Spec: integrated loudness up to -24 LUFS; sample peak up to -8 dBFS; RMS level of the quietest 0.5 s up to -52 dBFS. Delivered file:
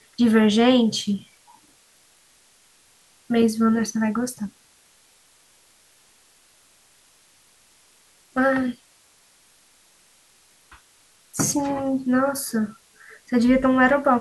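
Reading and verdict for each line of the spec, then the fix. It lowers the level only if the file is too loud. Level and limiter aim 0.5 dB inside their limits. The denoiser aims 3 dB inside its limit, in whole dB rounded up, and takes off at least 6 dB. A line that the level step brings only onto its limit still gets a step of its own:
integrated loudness -21.0 LUFS: fail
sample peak -6.0 dBFS: fail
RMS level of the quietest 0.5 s -58 dBFS: OK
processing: gain -3.5 dB

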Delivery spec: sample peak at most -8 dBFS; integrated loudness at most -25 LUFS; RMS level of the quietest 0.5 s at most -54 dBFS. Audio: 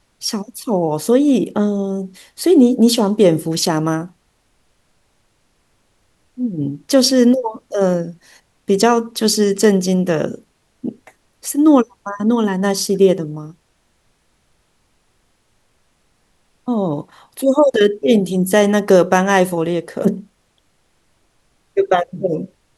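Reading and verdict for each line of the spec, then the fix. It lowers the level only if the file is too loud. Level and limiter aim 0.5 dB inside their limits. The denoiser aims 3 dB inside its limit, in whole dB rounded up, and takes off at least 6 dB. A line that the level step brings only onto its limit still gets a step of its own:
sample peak -1.5 dBFS: fail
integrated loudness -16.0 LUFS: fail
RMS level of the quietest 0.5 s -61 dBFS: OK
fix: gain -9.5 dB

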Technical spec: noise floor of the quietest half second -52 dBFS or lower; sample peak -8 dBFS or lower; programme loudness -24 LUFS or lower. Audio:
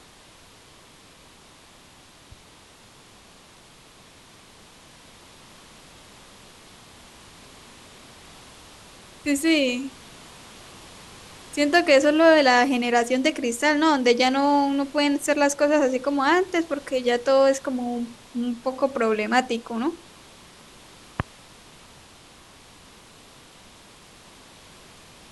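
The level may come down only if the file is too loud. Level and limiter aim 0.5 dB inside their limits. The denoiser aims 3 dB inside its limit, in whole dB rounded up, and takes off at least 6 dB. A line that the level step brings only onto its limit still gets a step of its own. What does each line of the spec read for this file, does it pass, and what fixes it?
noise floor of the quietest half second -51 dBFS: fail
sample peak -5.0 dBFS: fail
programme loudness -21.5 LUFS: fail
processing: gain -3 dB; limiter -8.5 dBFS

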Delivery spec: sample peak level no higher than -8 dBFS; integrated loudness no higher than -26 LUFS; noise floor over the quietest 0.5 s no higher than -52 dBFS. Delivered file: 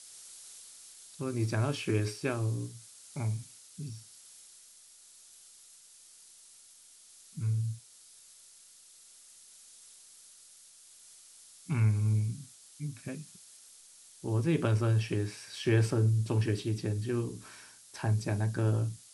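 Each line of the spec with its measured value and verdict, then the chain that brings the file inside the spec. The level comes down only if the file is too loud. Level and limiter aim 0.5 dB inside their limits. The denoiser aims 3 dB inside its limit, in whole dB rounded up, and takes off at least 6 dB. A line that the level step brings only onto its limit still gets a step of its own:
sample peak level -14.0 dBFS: OK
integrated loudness -32.0 LUFS: OK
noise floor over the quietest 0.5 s -57 dBFS: OK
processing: none

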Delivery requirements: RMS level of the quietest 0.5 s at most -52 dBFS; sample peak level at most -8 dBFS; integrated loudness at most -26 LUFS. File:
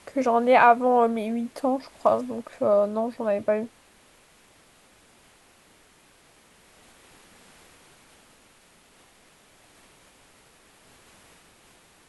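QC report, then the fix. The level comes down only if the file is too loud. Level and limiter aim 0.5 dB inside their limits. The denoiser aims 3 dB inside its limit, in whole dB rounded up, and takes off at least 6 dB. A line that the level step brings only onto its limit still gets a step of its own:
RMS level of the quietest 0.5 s -57 dBFS: OK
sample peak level -5.5 dBFS: fail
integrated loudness -23.0 LUFS: fail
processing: gain -3.5 dB

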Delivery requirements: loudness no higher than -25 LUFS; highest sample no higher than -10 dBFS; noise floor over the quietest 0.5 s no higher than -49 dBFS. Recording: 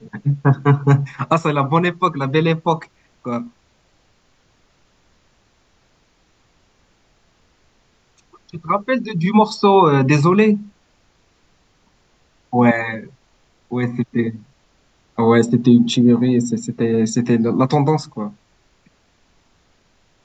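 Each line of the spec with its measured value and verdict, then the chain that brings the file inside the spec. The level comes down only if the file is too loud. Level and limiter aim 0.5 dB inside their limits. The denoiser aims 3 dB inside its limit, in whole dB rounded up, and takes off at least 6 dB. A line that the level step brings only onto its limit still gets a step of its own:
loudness -17.0 LUFS: fail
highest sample -2.5 dBFS: fail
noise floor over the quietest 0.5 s -59 dBFS: OK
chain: gain -8.5 dB

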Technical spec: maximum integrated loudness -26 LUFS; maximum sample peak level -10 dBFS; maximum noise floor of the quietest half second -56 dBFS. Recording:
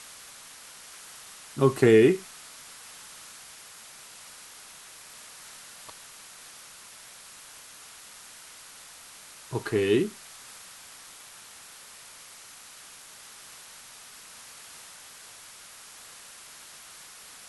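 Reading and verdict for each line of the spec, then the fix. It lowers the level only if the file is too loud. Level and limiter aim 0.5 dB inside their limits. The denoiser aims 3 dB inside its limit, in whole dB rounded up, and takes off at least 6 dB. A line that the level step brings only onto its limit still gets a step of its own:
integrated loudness -23.5 LUFS: fail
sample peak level -6.5 dBFS: fail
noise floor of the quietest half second -48 dBFS: fail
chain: denoiser 8 dB, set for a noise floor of -48 dBFS; gain -3 dB; limiter -10.5 dBFS

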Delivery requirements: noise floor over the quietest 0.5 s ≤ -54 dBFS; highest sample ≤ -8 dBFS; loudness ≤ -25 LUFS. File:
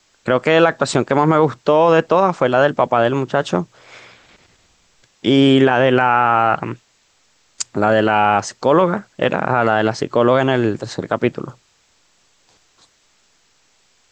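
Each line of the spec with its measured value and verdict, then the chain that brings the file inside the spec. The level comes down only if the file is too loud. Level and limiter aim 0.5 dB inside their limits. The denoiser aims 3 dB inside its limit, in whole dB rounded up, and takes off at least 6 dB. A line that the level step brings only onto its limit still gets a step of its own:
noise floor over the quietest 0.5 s -59 dBFS: OK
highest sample -2.5 dBFS: fail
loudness -16.0 LUFS: fail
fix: gain -9.5 dB

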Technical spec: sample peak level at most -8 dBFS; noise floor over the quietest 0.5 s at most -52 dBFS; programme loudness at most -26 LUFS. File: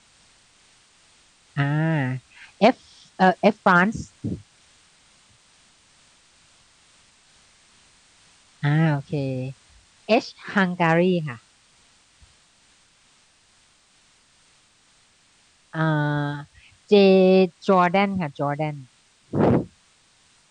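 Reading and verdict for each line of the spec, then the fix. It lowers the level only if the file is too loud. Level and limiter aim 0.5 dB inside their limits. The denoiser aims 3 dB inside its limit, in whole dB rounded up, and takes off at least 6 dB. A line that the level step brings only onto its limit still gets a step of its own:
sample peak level -4.0 dBFS: fail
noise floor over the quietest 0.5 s -59 dBFS: OK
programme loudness -21.5 LUFS: fail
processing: gain -5 dB

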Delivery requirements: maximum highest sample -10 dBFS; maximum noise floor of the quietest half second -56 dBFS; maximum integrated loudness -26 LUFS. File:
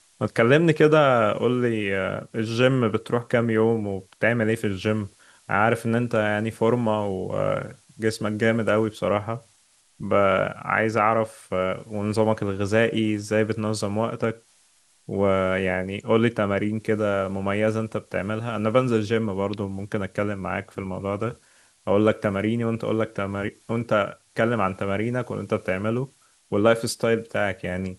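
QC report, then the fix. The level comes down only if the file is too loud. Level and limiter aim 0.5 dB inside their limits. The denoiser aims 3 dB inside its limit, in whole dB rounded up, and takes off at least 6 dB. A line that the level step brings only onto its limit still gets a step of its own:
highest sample -4.0 dBFS: fail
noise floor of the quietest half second -61 dBFS: OK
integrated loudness -24.0 LUFS: fail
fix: gain -2.5 dB; limiter -10.5 dBFS

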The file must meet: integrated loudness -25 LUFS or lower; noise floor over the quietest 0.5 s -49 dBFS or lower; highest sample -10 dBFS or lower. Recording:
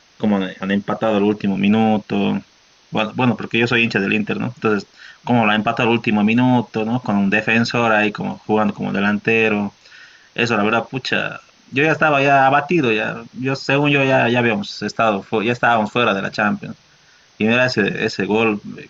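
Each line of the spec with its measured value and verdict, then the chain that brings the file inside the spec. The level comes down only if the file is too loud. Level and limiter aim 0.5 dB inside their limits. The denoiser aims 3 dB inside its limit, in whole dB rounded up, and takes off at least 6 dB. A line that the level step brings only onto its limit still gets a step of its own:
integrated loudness -17.5 LUFS: fail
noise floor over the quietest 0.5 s -52 dBFS: OK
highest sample -4.5 dBFS: fail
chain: gain -8 dB

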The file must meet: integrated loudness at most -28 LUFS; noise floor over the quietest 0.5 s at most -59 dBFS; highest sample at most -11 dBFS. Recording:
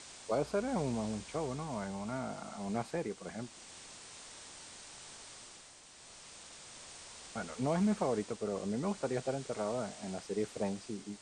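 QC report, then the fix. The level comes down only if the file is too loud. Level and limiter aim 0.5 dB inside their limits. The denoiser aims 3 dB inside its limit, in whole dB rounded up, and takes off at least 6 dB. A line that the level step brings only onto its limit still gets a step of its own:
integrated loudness -38.0 LUFS: OK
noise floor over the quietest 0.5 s -56 dBFS: fail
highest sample -20.5 dBFS: OK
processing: denoiser 6 dB, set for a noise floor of -56 dBFS

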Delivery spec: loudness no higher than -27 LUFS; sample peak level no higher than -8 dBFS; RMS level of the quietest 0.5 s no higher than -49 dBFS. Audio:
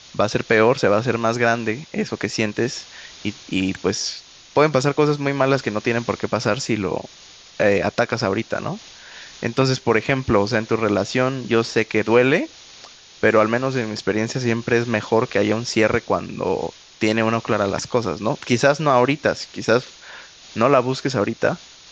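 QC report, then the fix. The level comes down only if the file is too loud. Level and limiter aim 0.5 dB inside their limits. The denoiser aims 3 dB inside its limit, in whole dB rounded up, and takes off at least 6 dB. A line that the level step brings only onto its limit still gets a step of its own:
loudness -20.5 LUFS: fail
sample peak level -3.0 dBFS: fail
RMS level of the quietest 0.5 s -45 dBFS: fail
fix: gain -7 dB

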